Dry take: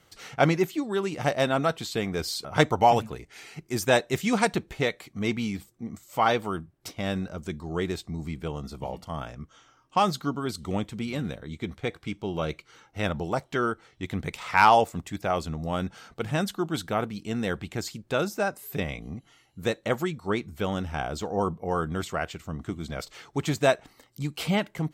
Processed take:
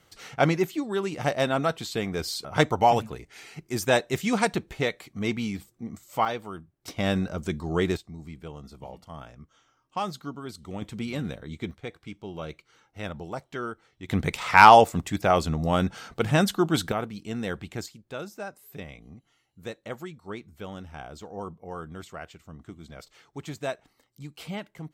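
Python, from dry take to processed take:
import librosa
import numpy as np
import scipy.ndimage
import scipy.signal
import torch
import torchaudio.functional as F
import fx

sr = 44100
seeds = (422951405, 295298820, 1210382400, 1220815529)

y = fx.gain(x, sr, db=fx.steps((0.0, -0.5), (6.25, -7.5), (6.88, 4.0), (7.97, -7.5), (10.82, -0.5), (11.71, -7.0), (14.09, 5.5), (16.92, -2.5), (17.86, -10.0)))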